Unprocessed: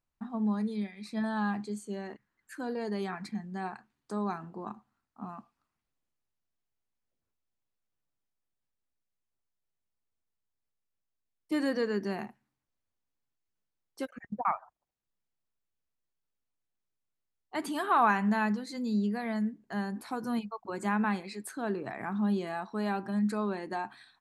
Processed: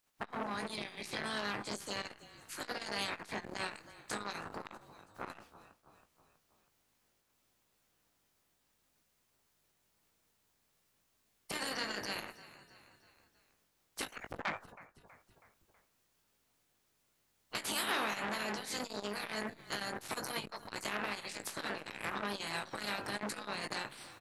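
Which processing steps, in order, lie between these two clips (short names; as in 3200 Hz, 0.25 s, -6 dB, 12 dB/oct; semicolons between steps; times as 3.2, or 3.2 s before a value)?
spectral limiter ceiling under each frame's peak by 30 dB; compressor 5:1, threshold -36 dBFS, peak gain reduction 13.5 dB; doubler 19 ms -7.5 dB; frequency-shifting echo 0.323 s, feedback 53%, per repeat -34 Hz, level -21.5 dB; core saturation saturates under 2500 Hz; gain +4.5 dB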